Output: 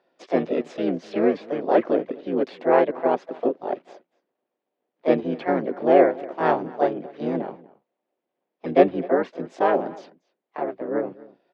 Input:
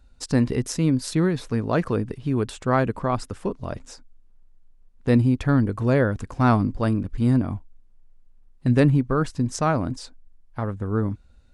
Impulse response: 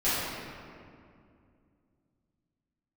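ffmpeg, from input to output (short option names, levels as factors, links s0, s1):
-filter_complex "[0:a]highpass=f=330:w=0.5412,highpass=f=330:w=1.3066,equalizer=f=380:t=q:w=4:g=7,equalizer=f=560:t=q:w=4:g=10,equalizer=f=800:t=q:w=4:g=4,equalizer=f=1100:t=q:w=4:g=-10,lowpass=f=3200:w=0.5412,lowpass=f=3200:w=1.3066,asplit=2[s0][s1];[s1]adelay=244.9,volume=0.0891,highshelf=f=4000:g=-5.51[s2];[s0][s2]amix=inputs=2:normalize=0,asplit=4[s3][s4][s5][s6];[s4]asetrate=29433,aresample=44100,atempo=1.49831,volume=0.708[s7];[s5]asetrate=55563,aresample=44100,atempo=0.793701,volume=0.794[s8];[s6]asetrate=58866,aresample=44100,atempo=0.749154,volume=0.282[s9];[s3][s7][s8][s9]amix=inputs=4:normalize=0,volume=0.668"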